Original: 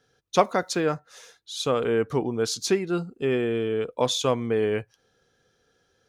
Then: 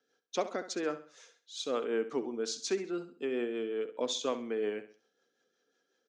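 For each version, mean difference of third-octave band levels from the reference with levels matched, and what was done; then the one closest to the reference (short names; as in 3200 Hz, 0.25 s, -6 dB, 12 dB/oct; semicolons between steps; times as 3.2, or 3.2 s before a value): 5.0 dB: Chebyshev band-pass 250–7400 Hz, order 3; rotary speaker horn 5.5 Hz; feedback echo 66 ms, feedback 35%, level -13 dB; gain -6.5 dB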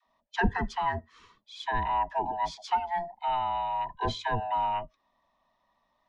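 11.5 dB: band-swap scrambler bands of 500 Hz; LPF 2900 Hz 12 dB/oct; dispersion lows, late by 68 ms, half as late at 440 Hz; gain -4.5 dB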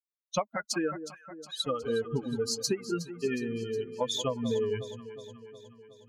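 9.0 dB: per-bin expansion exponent 3; compressor 8:1, threshold -31 dBFS, peak gain reduction 15.5 dB; echo with dull and thin repeats by turns 0.182 s, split 1000 Hz, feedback 76%, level -11 dB; gain +4.5 dB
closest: first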